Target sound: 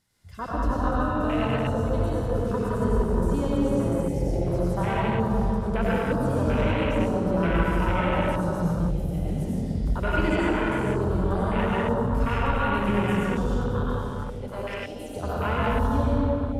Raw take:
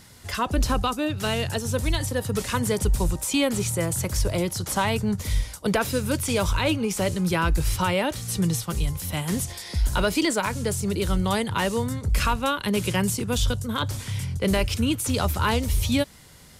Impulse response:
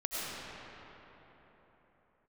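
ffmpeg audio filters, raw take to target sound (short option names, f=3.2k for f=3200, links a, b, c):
-filter_complex "[0:a]asettb=1/sr,asplit=3[a][b][c];[a]atrim=end=13.694[d];[b]atrim=start=13.69:end=15.16,asetpts=PTS-STARTPTS,afade=t=in:d=0.004:c=qsin,afade=t=out:st=1.466:d=0.004:c=qsin,highpass=620[e];[c]atrim=start=15.156[f];[d][e]acrossfade=d=0.004:c1=hsin:c2=qsin[g];[g][f]acrossfade=d=0.004:c1=qsin:c2=hsin[h];[1:a]atrim=start_sample=2205,asetrate=48510,aresample=44100[i];[h][i]afir=irnorm=-1:irlink=0,afwtdn=0.0562,volume=-4.5dB"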